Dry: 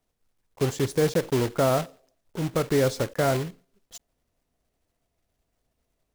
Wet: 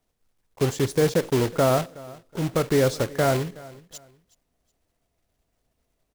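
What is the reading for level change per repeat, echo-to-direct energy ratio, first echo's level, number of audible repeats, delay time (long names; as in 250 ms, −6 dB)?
−11.0 dB, −20.5 dB, −21.0 dB, 2, 370 ms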